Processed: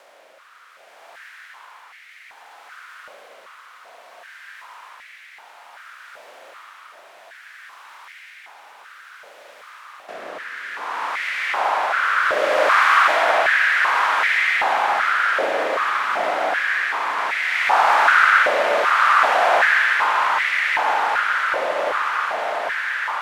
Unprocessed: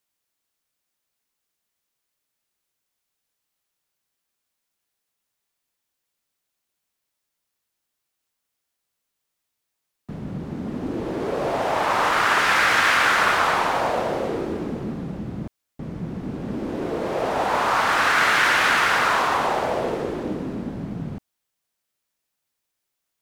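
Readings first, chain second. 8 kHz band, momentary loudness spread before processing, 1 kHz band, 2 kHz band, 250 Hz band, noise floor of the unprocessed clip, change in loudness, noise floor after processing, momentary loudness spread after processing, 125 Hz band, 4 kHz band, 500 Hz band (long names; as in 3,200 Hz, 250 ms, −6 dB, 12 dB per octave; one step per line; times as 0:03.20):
−3.5 dB, 16 LU, +5.0 dB, +5.5 dB, −13.5 dB, −81 dBFS, +3.5 dB, −47 dBFS, 10 LU, below −25 dB, +0.5 dB, +2.5 dB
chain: compressor on every frequency bin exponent 0.4
rotating-speaker cabinet horn 0.6 Hz
on a send: feedback delay with all-pass diffusion 1,138 ms, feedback 73%, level −4.5 dB
on the sum: spring reverb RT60 3.4 s, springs 36/59 ms, chirp 25 ms, DRR −2 dB
high-pass on a step sequencer 2.6 Hz 570–2,000 Hz
level −9.5 dB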